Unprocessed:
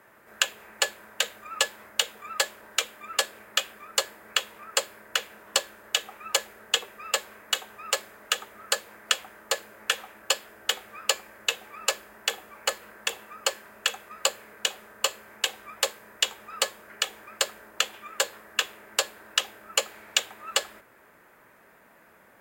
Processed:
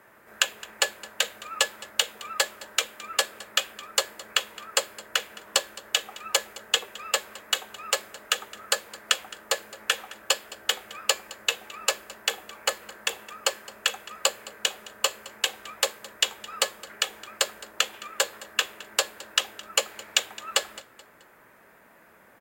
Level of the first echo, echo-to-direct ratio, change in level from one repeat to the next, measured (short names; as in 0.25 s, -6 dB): -19.5 dB, -19.0 dB, -8.0 dB